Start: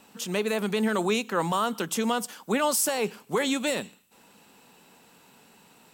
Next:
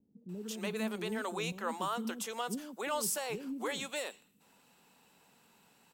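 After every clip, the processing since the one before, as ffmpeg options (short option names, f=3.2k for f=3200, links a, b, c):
-filter_complex "[0:a]acrossover=split=360[a][b];[b]adelay=290[c];[a][c]amix=inputs=2:normalize=0,volume=-9dB"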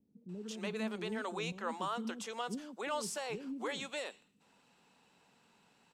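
-af "lowpass=6.7k,volume=-2dB"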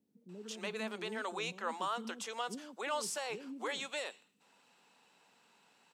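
-af "highpass=f=460:p=1,volume=2dB"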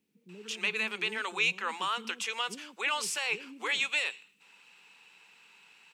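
-af "equalizer=f=100:t=o:w=0.67:g=-8,equalizer=f=250:t=o:w=0.67:g=-8,equalizer=f=630:t=o:w=0.67:g=-10,equalizer=f=2.5k:t=o:w=0.67:g=11,volume=5dB"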